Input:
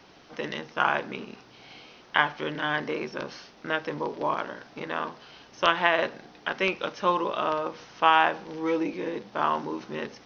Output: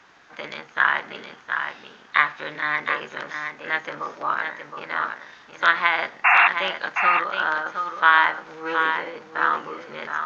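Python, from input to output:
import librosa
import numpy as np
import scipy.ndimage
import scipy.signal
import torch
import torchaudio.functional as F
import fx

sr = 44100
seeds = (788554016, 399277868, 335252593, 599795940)

p1 = fx.peak_eq(x, sr, hz=1300.0, db=14.0, octaves=1.6)
p2 = fx.formant_shift(p1, sr, semitones=3)
p3 = fx.spec_paint(p2, sr, seeds[0], shape='noise', start_s=6.24, length_s=0.24, low_hz=690.0, high_hz=2800.0, level_db=-8.0)
p4 = p3 + fx.echo_single(p3, sr, ms=717, db=-6.5, dry=0)
y = p4 * librosa.db_to_amplitude(-7.0)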